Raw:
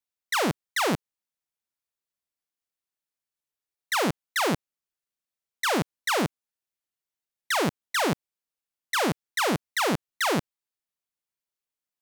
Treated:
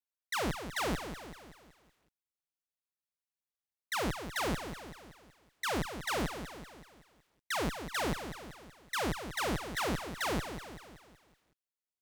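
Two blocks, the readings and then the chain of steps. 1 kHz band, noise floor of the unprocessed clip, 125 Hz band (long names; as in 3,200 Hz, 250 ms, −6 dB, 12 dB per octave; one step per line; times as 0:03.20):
−8.5 dB, below −85 dBFS, −6.5 dB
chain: sub-octave generator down 2 octaves, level −2 dB
feedback echo at a low word length 189 ms, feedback 55%, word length 9 bits, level −9 dB
level −9 dB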